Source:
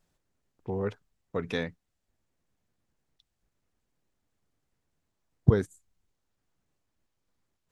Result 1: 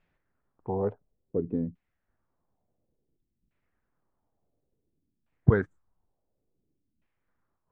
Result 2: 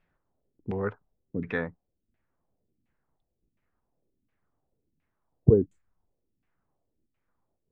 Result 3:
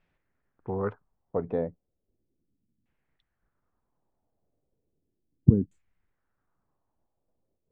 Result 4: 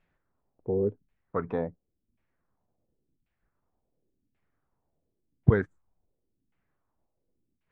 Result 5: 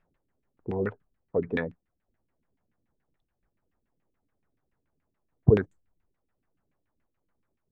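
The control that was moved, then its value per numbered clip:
LFO low-pass, rate: 0.57, 1.4, 0.35, 0.92, 7 Hz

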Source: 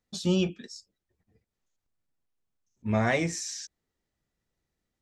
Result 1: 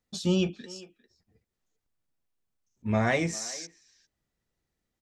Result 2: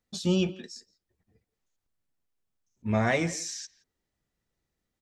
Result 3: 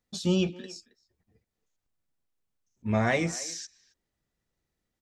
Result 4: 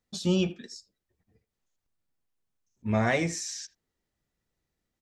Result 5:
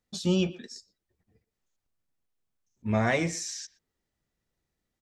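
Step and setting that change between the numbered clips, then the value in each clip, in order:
speakerphone echo, time: 400, 170, 270, 80, 120 ms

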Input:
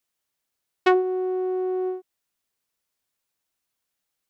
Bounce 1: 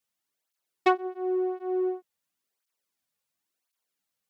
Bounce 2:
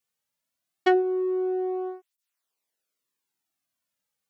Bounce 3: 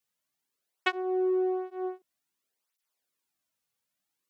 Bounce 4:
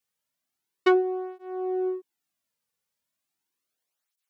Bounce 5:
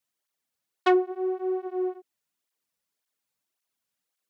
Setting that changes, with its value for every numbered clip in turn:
tape flanging out of phase, nulls at: 0.94, 0.23, 0.54, 0.36, 1.8 Hz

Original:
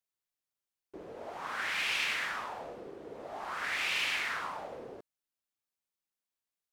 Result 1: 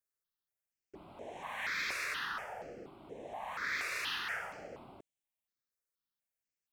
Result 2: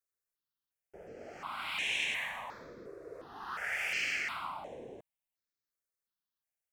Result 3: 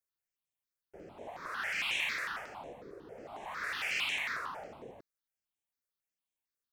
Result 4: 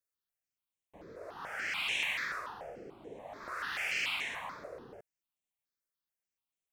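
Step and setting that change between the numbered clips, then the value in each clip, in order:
step phaser, rate: 4.2, 2.8, 11, 6.9 Hz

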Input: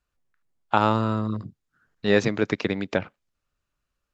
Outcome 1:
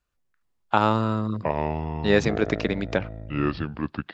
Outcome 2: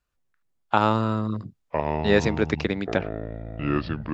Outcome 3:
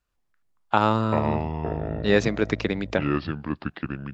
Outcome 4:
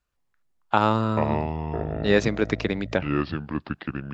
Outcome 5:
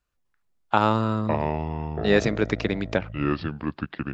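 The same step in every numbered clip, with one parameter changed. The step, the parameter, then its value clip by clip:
echoes that change speed, time: 412, 703, 87, 133, 252 ms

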